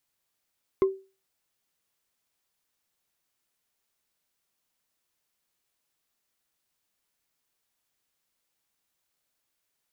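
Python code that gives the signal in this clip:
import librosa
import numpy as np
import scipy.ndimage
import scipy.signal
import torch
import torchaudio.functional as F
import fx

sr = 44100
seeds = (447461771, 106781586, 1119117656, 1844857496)

y = fx.strike_wood(sr, length_s=0.45, level_db=-15.0, body='bar', hz=385.0, decay_s=0.32, tilt_db=11.5, modes=5)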